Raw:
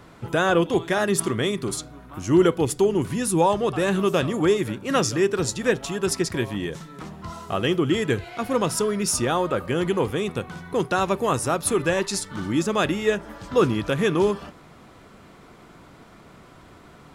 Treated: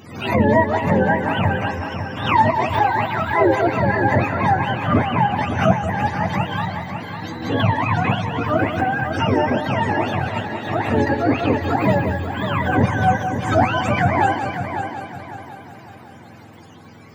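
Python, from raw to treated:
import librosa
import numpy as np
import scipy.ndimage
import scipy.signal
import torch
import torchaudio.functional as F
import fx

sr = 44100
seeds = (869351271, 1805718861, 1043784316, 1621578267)

y = fx.octave_mirror(x, sr, pivot_hz=570.0)
y = fx.echo_heads(y, sr, ms=184, heads='first and third', feedback_pct=53, wet_db=-9)
y = fx.pre_swell(y, sr, db_per_s=85.0)
y = F.gain(torch.from_numpy(y), 5.0).numpy()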